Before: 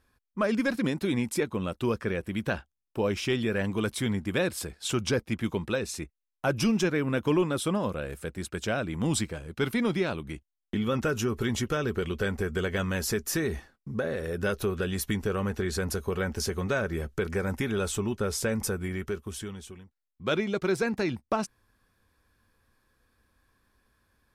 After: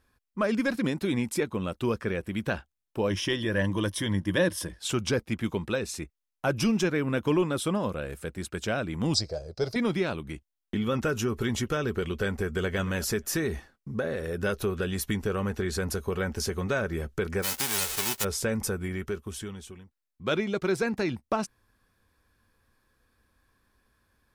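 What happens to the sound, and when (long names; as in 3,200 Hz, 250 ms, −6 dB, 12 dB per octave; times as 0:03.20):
0:03.09–0:04.79: EQ curve with evenly spaced ripples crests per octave 1.2, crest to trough 10 dB
0:09.14–0:09.76: drawn EQ curve 120 Hz 0 dB, 250 Hz −13 dB, 410 Hz +1 dB, 630 Hz +11 dB, 960 Hz −7 dB, 3,100 Hz −14 dB, 4,800 Hz +15 dB, 8,200 Hz −8 dB, 14,000 Hz −15 dB
0:12.36–0:12.81: delay throw 230 ms, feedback 10%, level −17 dB
0:17.42–0:18.23: spectral envelope flattened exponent 0.1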